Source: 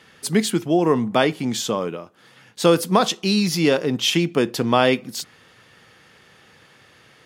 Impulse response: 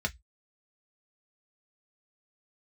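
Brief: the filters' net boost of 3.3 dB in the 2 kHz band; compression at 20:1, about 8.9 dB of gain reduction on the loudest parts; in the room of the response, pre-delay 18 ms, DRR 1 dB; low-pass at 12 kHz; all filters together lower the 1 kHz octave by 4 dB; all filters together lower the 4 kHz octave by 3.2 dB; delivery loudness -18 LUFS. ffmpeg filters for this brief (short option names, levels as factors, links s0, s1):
-filter_complex "[0:a]lowpass=12000,equalizer=f=1000:t=o:g=-7.5,equalizer=f=2000:t=o:g=8.5,equalizer=f=4000:t=o:g=-7,acompressor=threshold=0.1:ratio=20,asplit=2[s0][s1];[1:a]atrim=start_sample=2205,adelay=18[s2];[s1][s2]afir=irnorm=-1:irlink=0,volume=0.447[s3];[s0][s3]amix=inputs=2:normalize=0,volume=1.78"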